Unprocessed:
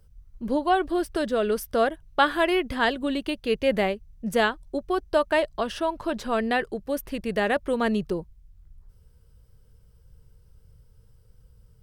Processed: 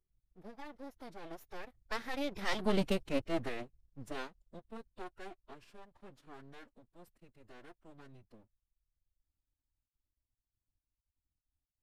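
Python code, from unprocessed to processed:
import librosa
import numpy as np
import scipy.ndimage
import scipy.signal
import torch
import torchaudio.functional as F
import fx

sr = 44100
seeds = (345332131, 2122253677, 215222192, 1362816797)

y = fx.doppler_pass(x, sr, speed_mps=43, closest_m=7.0, pass_at_s=2.8)
y = np.maximum(y, 0.0)
y = fx.pitch_keep_formants(y, sr, semitones=-6.5)
y = y * 10.0 ** (2.0 / 20.0)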